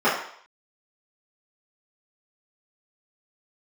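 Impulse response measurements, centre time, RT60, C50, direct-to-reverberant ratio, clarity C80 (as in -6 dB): 43 ms, 0.60 s, 4.0 dB, -12.0 dB, 7.5 dB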